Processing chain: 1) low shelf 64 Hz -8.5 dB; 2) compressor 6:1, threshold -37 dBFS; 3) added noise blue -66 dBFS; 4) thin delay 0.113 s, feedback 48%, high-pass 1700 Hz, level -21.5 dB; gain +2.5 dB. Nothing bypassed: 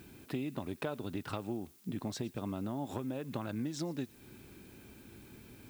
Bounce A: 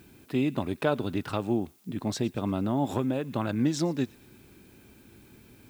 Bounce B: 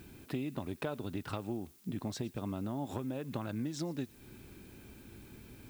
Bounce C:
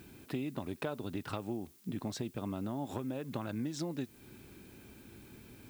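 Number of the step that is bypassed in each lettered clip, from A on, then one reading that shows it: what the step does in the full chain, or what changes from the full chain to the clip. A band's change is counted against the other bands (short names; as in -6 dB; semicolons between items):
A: 2, crest factor change -3.0 dB; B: 1, 125 Hz band +1.5 dB; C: 4, echo-to-direct -24.0 dB to none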